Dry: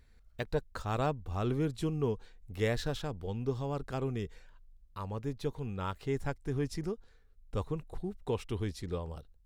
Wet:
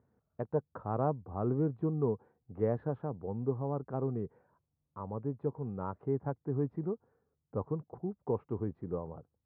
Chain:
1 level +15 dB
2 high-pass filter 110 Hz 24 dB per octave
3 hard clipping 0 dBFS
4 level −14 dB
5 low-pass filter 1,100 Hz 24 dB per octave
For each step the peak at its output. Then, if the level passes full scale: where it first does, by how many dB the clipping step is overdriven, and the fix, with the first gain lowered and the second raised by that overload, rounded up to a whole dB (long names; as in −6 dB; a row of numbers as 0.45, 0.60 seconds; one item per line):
−3.0, −1.5, −1.5, −15.5, −18.0 dBFS
no step passes full scale